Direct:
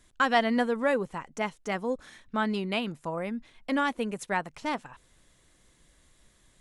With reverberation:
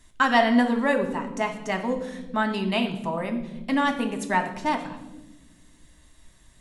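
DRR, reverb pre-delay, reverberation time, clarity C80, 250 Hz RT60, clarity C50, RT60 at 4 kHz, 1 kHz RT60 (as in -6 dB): 4.5 dB, 3 ms, 1.1 s, 12.0 dB, 2.1 s, 9.5 dB, 0.80 s, 0.80 s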